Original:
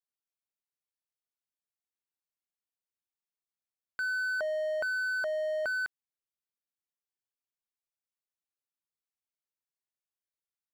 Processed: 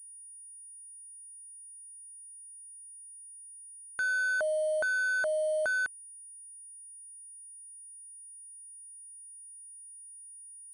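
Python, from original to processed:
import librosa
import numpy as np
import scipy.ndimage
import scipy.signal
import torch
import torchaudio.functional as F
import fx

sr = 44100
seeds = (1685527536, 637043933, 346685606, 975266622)

y = fx.wiener(x, sr, points=25)
y = fx.pwm(y, sr, carrier_hz=9600.0)
y = y * 10.0 ** (3.5 / 20.0)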